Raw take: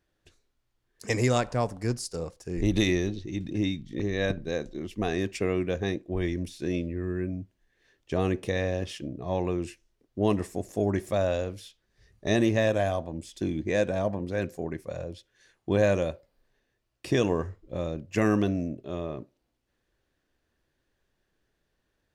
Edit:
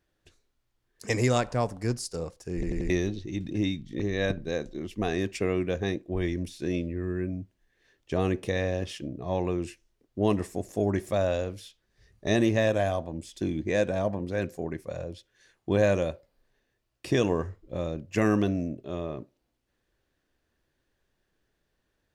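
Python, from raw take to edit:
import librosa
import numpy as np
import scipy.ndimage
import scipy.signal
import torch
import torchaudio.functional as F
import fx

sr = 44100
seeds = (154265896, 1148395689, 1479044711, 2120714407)

y = fx.edit(x, sr, fx.stutter_over(start_s=2.54, slice_s=0.09, count=4), tone=tone)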